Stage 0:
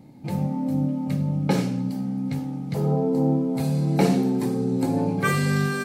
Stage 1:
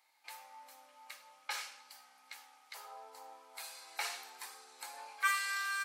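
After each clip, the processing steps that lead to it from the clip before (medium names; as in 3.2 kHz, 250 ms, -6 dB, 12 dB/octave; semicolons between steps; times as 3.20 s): high-pass 1.1 kHz 24 dB/octave; trim -5 dB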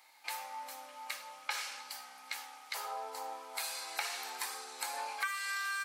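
compression 12:1, threshold -44 dBFS, peak gain reduction 18.5 dB; trim +10.5 dB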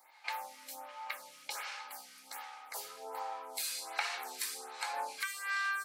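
lamp-driven phase shifter 1.3 Hz; trim +3.5 dB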